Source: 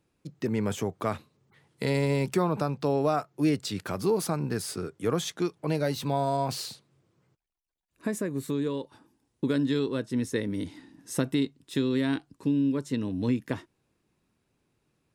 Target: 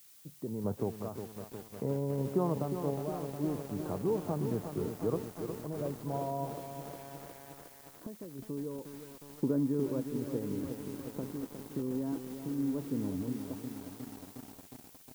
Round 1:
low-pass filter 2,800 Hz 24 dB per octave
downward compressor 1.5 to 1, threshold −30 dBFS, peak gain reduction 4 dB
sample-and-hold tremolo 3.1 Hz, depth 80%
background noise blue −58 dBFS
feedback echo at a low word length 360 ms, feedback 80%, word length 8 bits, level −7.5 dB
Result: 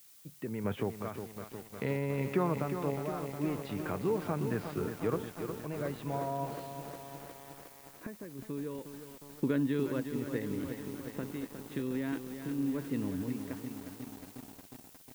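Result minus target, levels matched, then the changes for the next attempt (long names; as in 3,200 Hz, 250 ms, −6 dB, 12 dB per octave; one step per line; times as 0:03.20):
2,000 Hz band +10.5 dB
change: low-pass filter 970 Hz 24 dB per octave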